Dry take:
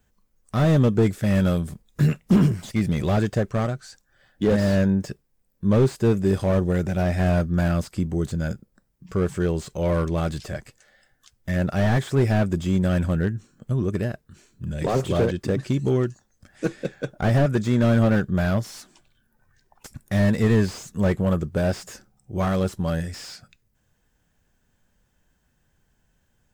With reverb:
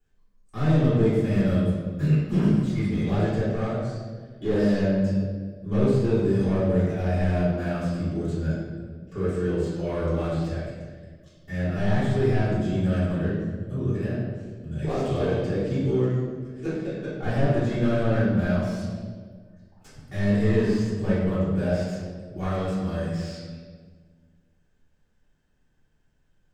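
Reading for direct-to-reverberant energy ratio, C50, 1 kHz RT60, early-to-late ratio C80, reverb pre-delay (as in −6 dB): −13.0 dB, −1.0 dB, 1.3 s, 1.5 dB, 3 ms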